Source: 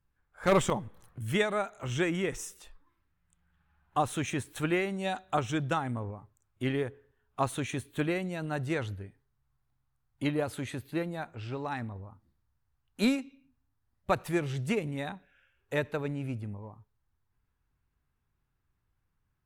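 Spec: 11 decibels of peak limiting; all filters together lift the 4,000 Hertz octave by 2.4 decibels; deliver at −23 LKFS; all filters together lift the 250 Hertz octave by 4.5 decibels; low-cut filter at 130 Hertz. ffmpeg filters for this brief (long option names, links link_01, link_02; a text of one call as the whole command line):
ffmpeg -i in.wav -af "highpass=130,equalizer=frequency=250:width_type=o:gain=6.5,equalizer=frequency=4000:width_type=o:gain=3,volume=11.5dB,alimiter=limit=-11dB:level=0:latency=1" out.wav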